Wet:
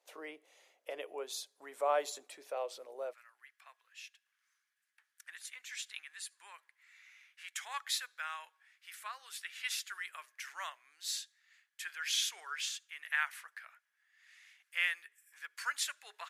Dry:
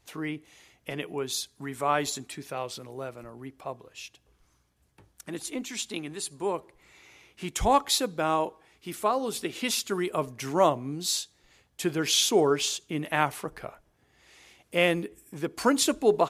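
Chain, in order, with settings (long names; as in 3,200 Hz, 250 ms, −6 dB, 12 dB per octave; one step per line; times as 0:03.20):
four-pole ladder high-pass 480 Hz, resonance 60%, from 0:03.12 1,500 Hz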